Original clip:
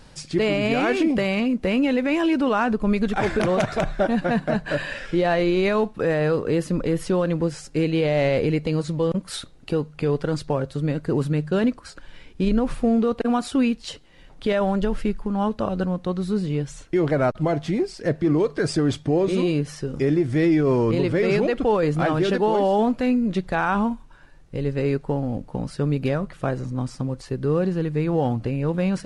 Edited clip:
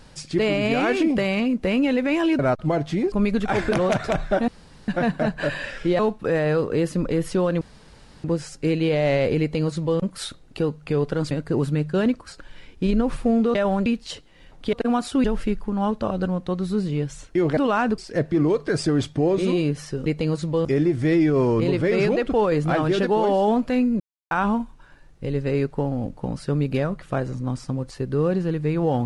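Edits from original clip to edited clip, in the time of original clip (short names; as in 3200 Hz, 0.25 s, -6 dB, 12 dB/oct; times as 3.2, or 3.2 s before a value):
2.39–2.8 swap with 17.15–17.88
4.16 insert room tone 0.40 s
5.27–5.74 cut
7.36 insert room tone 0.63 s
8.52–9.11 copy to 19.96
10.43–10.89 cut
13.13–13.64 swap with 14.51–14.82
23.31–23.62 mute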